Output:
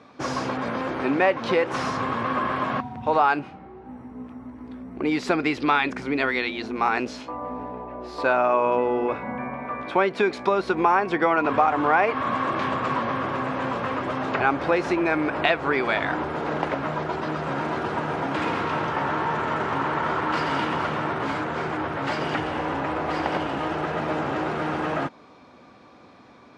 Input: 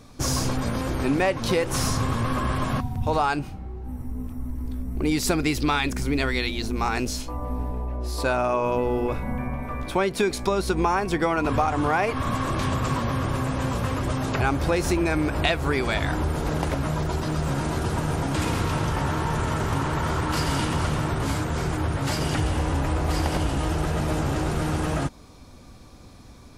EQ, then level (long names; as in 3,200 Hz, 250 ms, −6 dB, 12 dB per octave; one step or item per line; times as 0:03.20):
band-pass filter 200–2,300 Hz
low-shelf EQ 430 Hz −7.5 dB
+5.5 dB